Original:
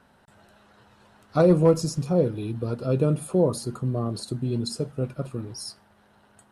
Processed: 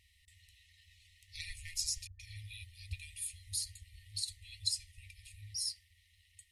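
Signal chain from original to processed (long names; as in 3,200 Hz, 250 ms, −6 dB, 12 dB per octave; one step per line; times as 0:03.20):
0:02.07–0:02.93: all-pass dispersion highs, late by 125 ms, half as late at 410 Hz
brick-wall band-stop 100–1,800 Hz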